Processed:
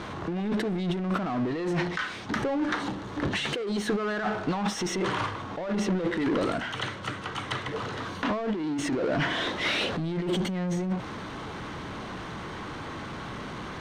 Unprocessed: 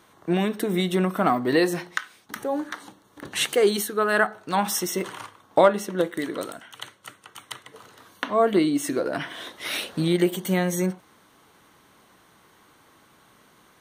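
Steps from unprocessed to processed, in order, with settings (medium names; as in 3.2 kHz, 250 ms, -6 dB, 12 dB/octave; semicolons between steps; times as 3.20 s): bass shelf 180 Hz +9.5 dB; compressor with a negative ratio -30 dBFS, ratio -1; power-law waveshaper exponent 0.5; distance through air 140 m; trim -9 dB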